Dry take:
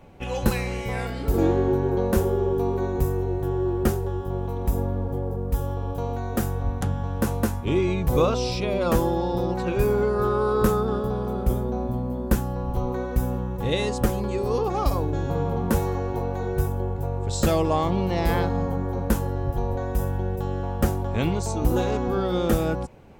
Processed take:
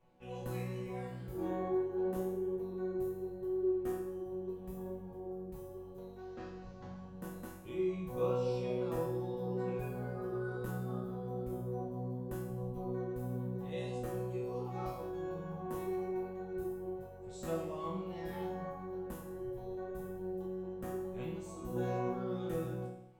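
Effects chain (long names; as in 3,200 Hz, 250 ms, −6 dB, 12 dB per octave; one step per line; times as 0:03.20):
0:06.18–0:07.01: variable-slope delta modulation 32 kbit/s
dynamic equaliser 4,900 Hz, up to −6 dB, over −52 dBFS, Q 1.3
resonators tuned to a chord B2 sus4, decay 0.76 s
flanger 0.79 Hz, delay 1.8 ms, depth 7.9 ms, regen −69%
level +5 dB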